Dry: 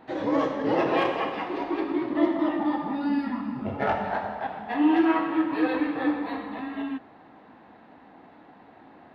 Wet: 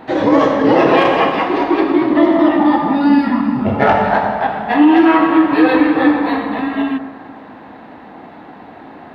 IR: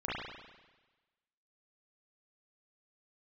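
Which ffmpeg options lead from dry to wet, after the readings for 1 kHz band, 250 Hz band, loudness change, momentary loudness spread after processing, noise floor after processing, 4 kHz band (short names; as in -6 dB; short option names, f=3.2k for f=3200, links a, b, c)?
+14.0 dB, +13.0 dB, +13.5 dB, 8 LU, -37 dBFS, +13.5 dB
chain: -filter_complex "[0:a]asplit=2[a][b];[1:a]atrim=start_sample=2205,asetrate=24696,aresample=44100[c];[b][c]afir=irnorm=-1:irlink=0,volume=-20dB[d];[a][d]amix=inputs=2:normalize=0,alimiter=level_in=14.5dB:limit=-1dB:release=50:level=0:latency=1,volume=-1dB"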